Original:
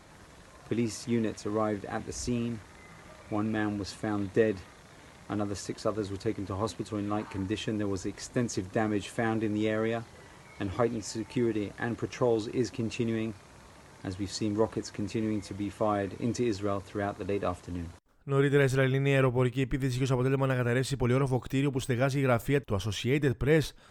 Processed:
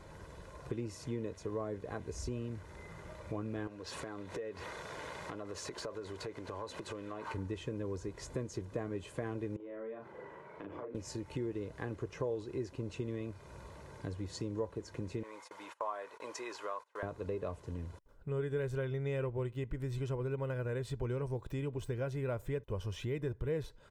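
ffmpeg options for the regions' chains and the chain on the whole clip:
ffmpeg -i in.wav -filter_complex "[0:a]asettb=1/sr,asplit=3[link_01][link_02][link_03];[link_01]atrim=end=3.674[link_04];[link_02]atrim=start=3.67:end=7.34,asetpts=PTS-STARTPTS,afade=type=in:duration=0.004:curve=qsin,afade=type=out:start_time=3.666:duration=0.004:curve=qsin,acompressor=threshold=-43dB:ratio=8:attack=3.2:release=140:knee=1:detection=peak,asplit=2[link_05][link_06];[link_06]highpass=frequency=720:poles=1,volume=18dB,asoftclip=type=tanh:threshold=-21dB[link_07];[link_05][link_07]amix=inputs=2:normalize=0,lowpass=frequency=5900:poles=1,volume=-6dB[link_08];[link_03]atrim=start=7.336[link_09];[link_04][link_08]acrossfade=duration=0.004:curve1=hsin:curve2=qsin[link_10];[link_10][link_09]acrossfade=duration=0.004:curve1=qsin:curve2=hsin,asettb=1/sr,asplit=3[link_11][link_12][link_13];[link_11]atrim=end=9.564[link_14];[link_12]atrim=start=9.56:end=10.95,asetpts=PTS-STARTPTS,afade=type=in:duration=0.004:curve=qsin,afade=type=out:start_time=1.386:duration=0.004:curve=qsin,acrossover=split=190 2400:gain=0.0708 1 0.1[link_15][link_16][link_17];[link_15][link_16][link_17]amix=inputs=3:normalize=0,acompressor=threshold=-43dB:ratio=6:attack=3.2:release=140:knee=1:detection=peak,asplit=2[link_18][link_19];[link_19]adelay=40,volume=-3dB[link_20];[link_18][link_20]amix=inputs=2:normalize=0,atrim=end_sample=61299[link_21];[link_13]atrim=start=10.946[link_22];[link_14][link_21]acrossfade=duration=0.004:curve1=hsin:curve2=qsin[link_23];[link_23][link_22]acrossfade=duration=0.004:curve1=qsin:curve2=hsin,asettb=1/sr,asplit=3[link_24][link_25][link_26];[link_24]atrim=end=15.234[link_27];[link_25]atrim=start=15.23:end=17.03,asetpts=PTS-STARTPTS,afade=type=in:duration=0.004:curve=qsin,afade=type=out:start_time=1.796:duration=0.004:curve=qsin,agate=range=-23dB:threshold=-43dB:ratio=16:release=100:detection=peak,highpass=frequency=940:width_type=q:width=2[link_28];[link_26]atrim=start=17.026[link_29];[link_27][link_28]acrossfade=duration=0.004:curve1=hsin:curve2=qsin[link_30];[link_30][link_29]acrossfade=duration=0.004:curve1=qsin:curve2=hsin,tiltshelf=frequency=1300:gain=4.5,aecho=1:1:2:0.47,acompressor=threshold=-38dB:ratio=2.5,volume=-2dB" out.wav

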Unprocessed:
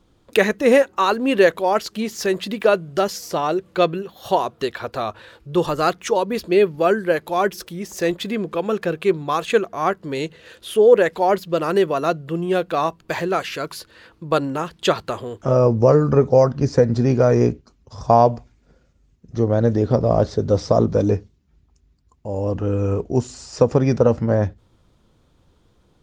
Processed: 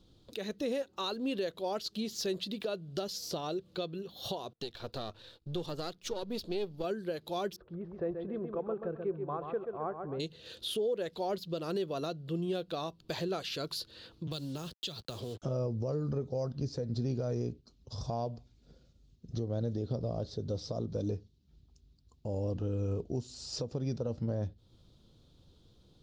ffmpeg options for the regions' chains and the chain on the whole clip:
ffmpeg -i in.wav -filter_complex "[0:a]asettb=1/sr,asplit=3[link_01][link_02][link_03];[link_01]atrim=end=4.534[link_04];[link_02]atrim=start=4.53:end=6.84,asetpts=PTS-STARTPTS,afade=type=in:duration=0.004:curve=qsin,afade=type=out:start_time=2.306:duration=0.004:curve=qsin,aeval=exprs='if(lt(val(0),0),0.447*val(0),val(0))':channel_layout=same,agate=range=-33dB:threshold=-44dB:ratio=3:release=100:detection=peak[link_05];[link_03]atrim=start=6.836[link_06];[link_04][link_05]acrossfade=duration=0.004:curve1=hsin:curve2=qsin[link_07];[link_07][link_06]acrossfade=duration=0.004:curve1=qsin:curve2=hsin,asettb=1/sr,asplit=3[link_08][link_09][link_10];[link_08]atrim=end=7.564[link_11];[link_09]atrim=start=7.56:end=10.2,asetpts=PTS-STARTPTS,afade=type=in:duration=0.004:curve=qsin,afade=type=out:start_time=2.636:duration=0.004:curve=qsin,lowpass=frequency=1400:width=0.5412,lowpass=frequency=1400:width=1.3066,equalizer=frequency=230:width=1:gain=-8,aecho=1:1:131|262|393|524:0.422|0.143|0.0487|0.0166,atrim=end_sample=116424[link_12];[link_10]atrim=start=10.196[link_13];[link_11][link_12]acrossfade=duration=0.004:curve1=hsin:curve2=qsin[link_14];[link_14][link_13]acrossfade=duration=0.004:curve1=qsin:curve2=hsin,asettb=1/sr,asplit=3[link_15][link_16][link_17];[link_15]atrim=end=14.274[link_18];[link_16]atrim=start=14.27:end=15.42,asetpts=PTS-STARTPTS,afade=type=in:duration=0.004:curve=qsin,afade=type=out:start_time=1.146:duration=0.004:curve=qsin,agate=range=-33dB:threshold=-44dB:ratio=3:release=100:detection=peak,acrusher=bits=6:mix=0:aa=0.5,acrossover=split=150|3000[link_19][link_20][link_21];[link_20]acompressor=threshold=-28dB:ratio=6:attack=3.2:release=140:knee=2.83:detection=peak[link_22];[link_19][link_22][link_21]amix=inputs=3:normalize=0[link_23];[link_17]atrim=start=15.416[link_24];[link_18][link_23]acrossfade=duration=0.004:curve1=hsin:curve2=qsin[link_25];[link_25][link_24]acrossfade=duration=0.004:curve1=qsin:curve2=hsin,equalizer=frequency=125:width_type=o:width=1:gain=3,equalizer=frequency=1000:width_type=o:width=1:gain=-6,equalizer=frequency=2000:width_type=o:width=1:gain=-10,equalizer=frequency=4000:width_type=o:width=1:gain=11,equalizer=frequency=8000:width_type=o:width=1:gain=-4,acompressor=threshold=-35dB:ratio=1.5,alimiter=limit=-21dB:level=0:latency=1:release=325,volume=-4.5dB" out.wav

